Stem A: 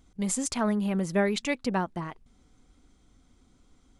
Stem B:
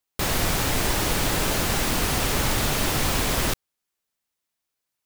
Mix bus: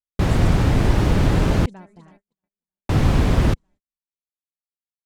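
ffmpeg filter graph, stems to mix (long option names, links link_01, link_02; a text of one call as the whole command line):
ffmpeg -i stem1.wav -i stem2.wav -filter_complex "[0:a]bandreject=frequency=1200:width=9.1,volume=-17dB,asplit=2[link_01][link_02];[link_02]volume=-12.5dB[link_03];[1:a]highpass=frequency=200:poles=1,aemphasis=mode=reproduction:type=riaa,volume=0dB,asplit=3[link_04][link_05][link_06];[link_04]atrim=end=1.66,asetpts=PTS-STARTPTS,afade=type=out:start_time=1.656:duration=0.004:curve=hsin[link_07];[link_05]atrim=start=1.66:end=2.89,asetpts=PTS-STARTPTS,volume=0[link_08];[link_06]atrim=start=2.89,asetpts=PTS-STARTPTS,afade=type=in:duration=0.004:curve=hsin[link_09];[link_07][link_08][link_09]concat=n=3:v=0:a=1[link_10];[link_03]aecho=0:1:315|630|945|1260|1575|1890|2205|2520|2835|3150:1|0.6|0.36|0.216|0.13|0.0778|0.0467|0.028|0.0168|0.0101[link_11];[link_01][link_10][link_11]amix=inputs=3:normalize=0,agate=range=-40dB:threshold=-53dB:ratio=16:detection=peak,lowshelf=frequency=260:gain=7.5" out.wav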